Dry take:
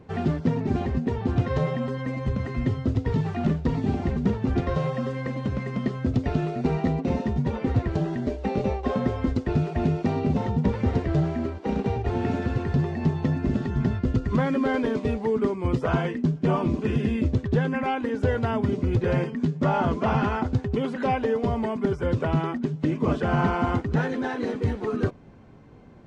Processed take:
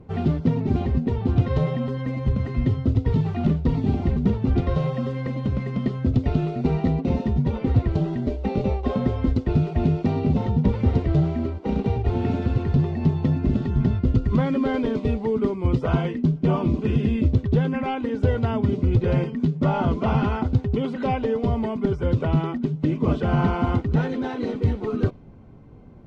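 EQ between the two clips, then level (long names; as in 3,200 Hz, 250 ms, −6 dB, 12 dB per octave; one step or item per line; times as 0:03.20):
notch filter 1,700 Hz, Q 8.3
dynamic equaliser 3,700 Hz, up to +7 dB, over −52 dBFS, Q 0.98
spectral tilt −2 dB per octave
−2.0 dB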